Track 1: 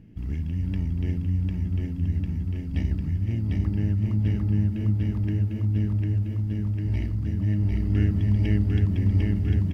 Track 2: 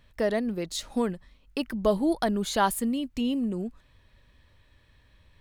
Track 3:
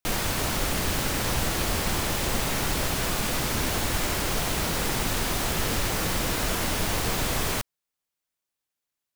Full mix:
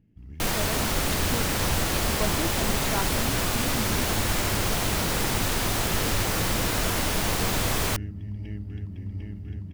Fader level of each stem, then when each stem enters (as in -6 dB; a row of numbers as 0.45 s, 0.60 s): -13.0 dB, -8.5 dB, +1.0 dB; 0.00 s, 0.35 s, 0.35 s